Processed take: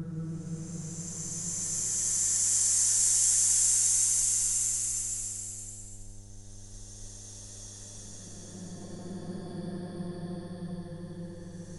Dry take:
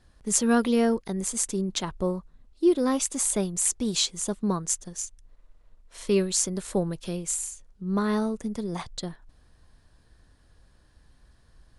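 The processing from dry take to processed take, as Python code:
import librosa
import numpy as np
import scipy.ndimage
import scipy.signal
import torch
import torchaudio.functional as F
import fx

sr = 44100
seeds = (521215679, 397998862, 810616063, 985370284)

y = fx.paulstretch(x, sr, seeds[0], factor=39.0, window_s=0.1, from_s=4.63)
y = fx.dmg_buzz(y, sr, base_hz=100.0, harmonics=9, level_db=-51.0, tilt_db=-9, odd_only=False)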